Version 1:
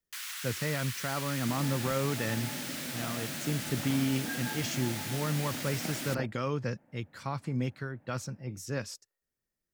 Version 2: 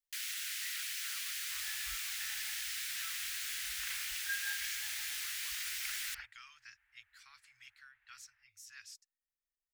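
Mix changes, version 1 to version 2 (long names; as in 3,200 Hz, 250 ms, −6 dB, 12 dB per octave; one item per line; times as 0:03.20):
speech −8.5 dB
second sound +6.0 dB
master: add inverse Chebyshev band-stop filter 180–450 Hz, stop band 80 dB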